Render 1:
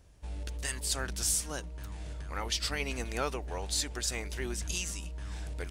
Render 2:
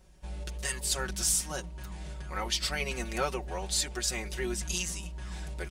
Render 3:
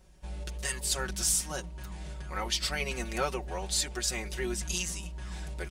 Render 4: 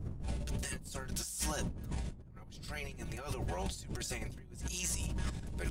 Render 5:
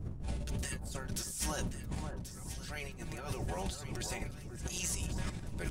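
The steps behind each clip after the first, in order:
comb 5.4 ms, depth 83%
nothing audible
wind noise 120 Hz -28 dBFS; negative-ratio compressor -39 dBFS, ratio -1; high shelf 9100 Hz +6.5 dB; gain -3 dB
echo with dull and thin repeats by turns 0.542 s, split 1500 Hz, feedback 65%, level -7 dB

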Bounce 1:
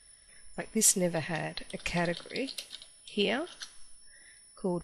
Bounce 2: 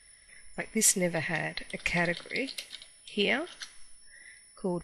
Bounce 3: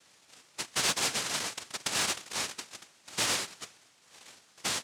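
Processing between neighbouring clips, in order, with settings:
bell 2100 Hz +10 dB 0.39 oct
noise vocoder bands 1; soft clip -17.5 dBFS, distortion -21 dB; gain -1 dB

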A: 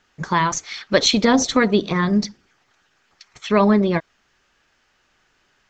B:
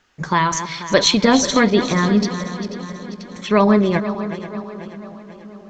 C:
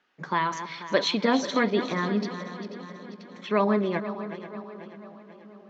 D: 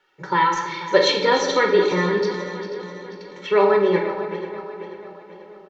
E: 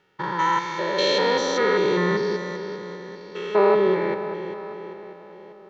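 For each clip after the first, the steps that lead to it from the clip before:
regenerating reverse delay 0.244 s, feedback 68%, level -11 dB; darkening echo 0.292 s, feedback 80%, low-pass 2000 Hz, level -19 dB; gain +1.5 dB
three-band isolator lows -23 dB, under 170 Hz, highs -20 dB, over 4600 Hz; gain -8 dB
comb 2.2 ms, depth 96%; shoebox room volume 430 m³, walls mixed, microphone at 1.1 m; gain +2 dB
stepped spectrum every 0.2 s

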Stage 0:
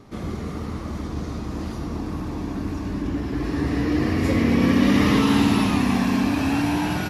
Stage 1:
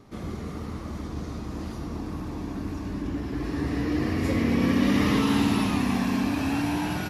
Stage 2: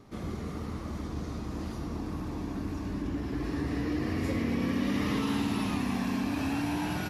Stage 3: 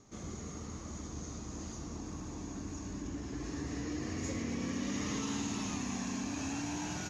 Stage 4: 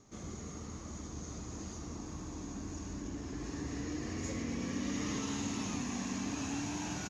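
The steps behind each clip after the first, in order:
high shelf 11000 Hz +3.5 dB; gain -4.5 dB
compressor 2.5:1, threshold -26 dBFS, peak gain reduction 6 dB; gain -2 dB
synth low-pass 6600 Hz, resonance Q 15; gain -7.5 dB
echo 1.145 s -8 dB; gain -1 dB

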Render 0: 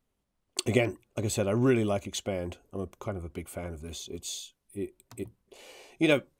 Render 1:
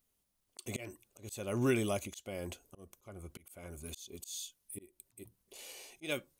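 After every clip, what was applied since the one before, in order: pre-emphasis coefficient 0.8; auto swell 0.302 s; notch 7600 Hz, Q 18; gain +7.5 dB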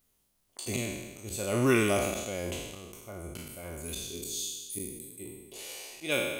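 spectral trails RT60 1.24 s; gain +4.5 dB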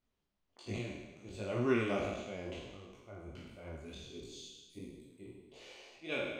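air absorption 180 m; detuned doubles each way 49 cents; gain -2.5 dB

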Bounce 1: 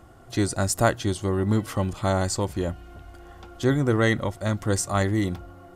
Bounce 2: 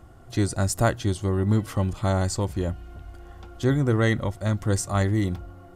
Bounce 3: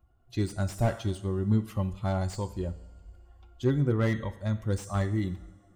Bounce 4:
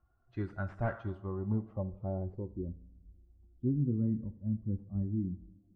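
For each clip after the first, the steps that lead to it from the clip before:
low shelf 150 Hz +7.5 dB; gain -2.5 dB
per-bin expansion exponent 1.5; two-slope reverb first 0.65 s, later 2.3 s, from -17 dB, DRR 11 dB; slew limiter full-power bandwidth 68 Hz; gain -3 dB
low-pass sweep 1500 Hz -> 240 Hz, 0.94–2.83; gain -8 dB

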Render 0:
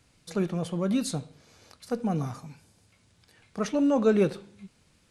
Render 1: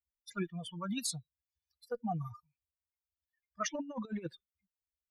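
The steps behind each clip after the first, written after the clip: per-bin expansion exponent 3; low shelf 380 Hz -11 dB; negative-ratio compressor -37 dBFS, ratio -0.5; gain +1.5 dB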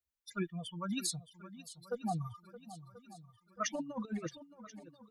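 swung echo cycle 1.034 s, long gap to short 1.5:1, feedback 41%, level -15 dB

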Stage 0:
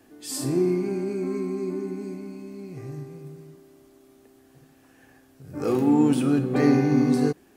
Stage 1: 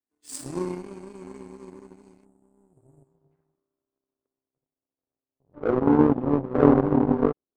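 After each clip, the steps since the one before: low-pass sweep 8900 Hz -> 580 Hz, 3.04–3.6; spectral delete 2.25–3.32, 660–6900 Hz; power-law curve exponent 2; gain +4.5 dB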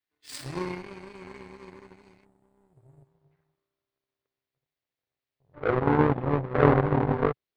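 graphic EQ 125/250/2000/4000/8000 Hz +6/-10/+9/+8/-10 dB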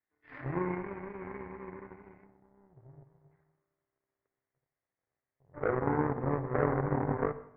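Chebyshev low-pass 2000 Hz, order 4; compressor 3:1, threshold -31 dBFS, peak gain reduction 13.5 dB; reverb RT60 0.70 s, pre-delay 47 ms, DRR 13 dB; gain +2.5 dB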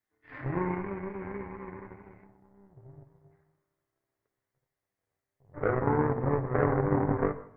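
flange 0.49 Hz, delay 8.9 ms, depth 1.6 ms, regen +60%; low shelf 180 Hz +4.5 dB; gain +6.5 dB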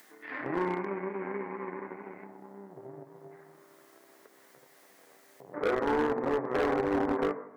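HPF 220 Hz 24 dB/oct; in parallel at +1.5 dB: upward compressor, threshold -30 dBFS; on the sum: overloaded stage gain 18 dB; gain -4.5 dB

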